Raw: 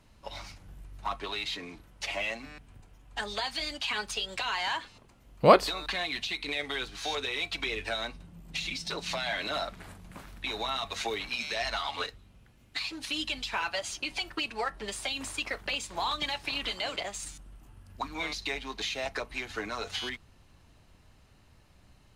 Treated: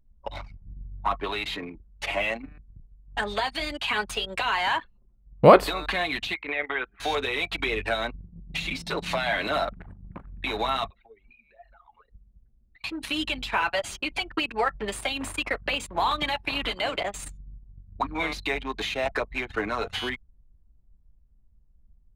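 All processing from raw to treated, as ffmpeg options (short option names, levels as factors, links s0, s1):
-filter_complex "[0:a]asettb=1/sr,asplit=3[s0][s1][s2];[s0]atrim=end=6.344[s3];[s1]atrim=start=6.34:end=7,asetpts=PTS-STARTPTS,afade=t=in:d=0.004:c=qsin,afade=t=out:st=0.656:d=0.004:c=qsin,lowpass=f=2200:w=0.5412,lowpass=f=2200:w=1.3066,aemphasis=mode=production:type=riaa,aeval=exprs='val(0)+0.000501*(sin(2*PI*60*n/s)+sin(2*PI*2*60*n/s)/2+sin(2*PI*3*60*n/s)/3+sin(2*PI*4*60*n/s)/4+sin(2*PI*5*60*n/s)/5)':c=same[s4];[s2]atrim=start=6.996[s5];[s3][s4]acrossfade=d=0.004:c1=hsin:c2=qsin[s6];[s6][s5]acrossfade=d=0.004:c1=qsin:c2=hsin,asettb=1/sr,asplit=3[s7][s8][s9];[s7]atrim=end=10.904[s10];[s8]atrim=start=10.9:end=12.84,asetpts=PTS-STARTPTS,afade=t=in:d=0.004:c=qsin,afade=t=out:st=1.936:d=0.004:c=qsin,lowpass=3500,acompressor=threshold=0.00447:ratio=10:attack=3.2:release=140:knee=1:detection=peak,asplit=2[s11][s12];[s12]adelay=13,volume=0.282[s13];[s11][s13]amix=inputs=2:normalize=0,atrim=end_sample=85554[s14];[s9]atrim=start=12.836[s15];[s10][s14]acrossfade=d=0.004:c1=hsin:c2=qsin[s16];[s16][s15]acrossfade=d=0.004:c1=qsin:c2=hsin,anlmdn=0.251,equalizer=f=5500:t=o:w=1.3:g=-12,alimiter=level_in=2.82:limit=0.891:release=50:level=0:latency=1,volume=0.891"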